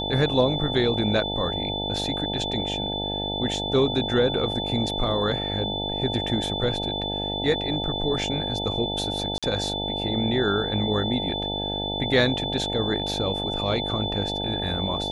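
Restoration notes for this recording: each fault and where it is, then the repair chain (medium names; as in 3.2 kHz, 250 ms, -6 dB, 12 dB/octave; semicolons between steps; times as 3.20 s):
buzz 50 Hz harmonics 18 -31 dBFS
whine 3.5 kHz -29 dBFS
9.38–9.43 s: dropout 46 ms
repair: de-hum 50 Hz, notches 18; band-stop 3.5 kHz, Q 30; interpolate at 9.38 s, 46 ms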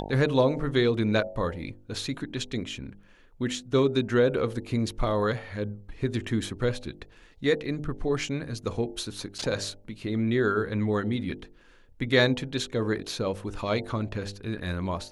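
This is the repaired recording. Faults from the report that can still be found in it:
nothing left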